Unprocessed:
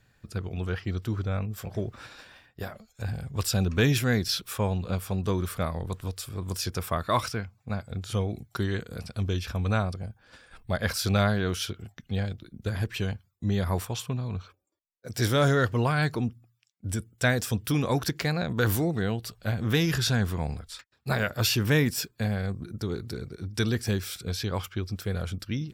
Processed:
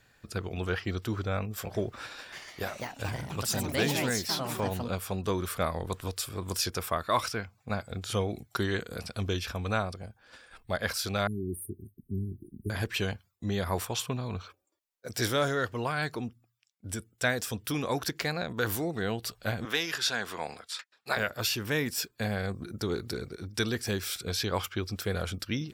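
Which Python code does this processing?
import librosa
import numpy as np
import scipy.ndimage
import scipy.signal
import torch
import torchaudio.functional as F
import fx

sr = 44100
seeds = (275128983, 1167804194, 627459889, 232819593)

y = fx.echo_pitch(x, sr, ms=333, semitones=4, count=3, db_per_echo=-3.0, at=(1.99, 5.22))
y = fx.brickwall_bandstop(y, sr, low_hz=420.0, high_hz=8500.0, at=(11.27, 12.7))
y = fx.weighting(y, sr, curve='A', at=(19.65, 21.17))
y = fx.low_shelf(y, sr, hz=87.0, db=-7.5)
y = fx.rider(y, sr, range_db=4, speed_s=0.5)
y = fx.peak_eq(y, sr, hz=140.0, db=-6.0, octaves=1.9)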